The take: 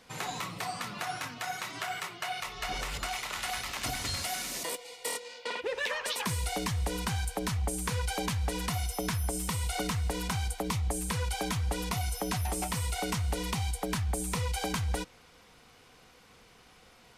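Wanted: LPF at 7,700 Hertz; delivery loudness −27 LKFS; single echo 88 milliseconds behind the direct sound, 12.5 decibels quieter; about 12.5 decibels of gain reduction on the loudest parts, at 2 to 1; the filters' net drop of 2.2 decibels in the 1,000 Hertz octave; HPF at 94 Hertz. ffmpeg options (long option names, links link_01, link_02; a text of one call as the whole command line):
ffmpeg -i in.wav -af "highpass=94,lowpass=7700,equalizer=frequency=1000:width_type=o:gain=-3,acompressor=threshold=-54dB:ratio=2,aecho=1:1:88:0.237,volume=19.5dB" out.wav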